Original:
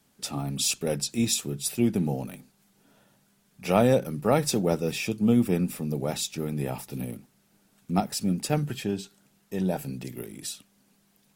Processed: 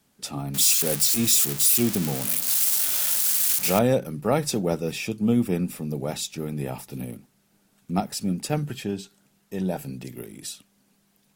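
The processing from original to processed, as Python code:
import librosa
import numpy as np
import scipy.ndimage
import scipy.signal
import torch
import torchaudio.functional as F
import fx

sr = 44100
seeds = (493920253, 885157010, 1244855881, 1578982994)

y = fx.crossing_spikes(x, sr, level_db=-15.0, at=(0.54, 3.79))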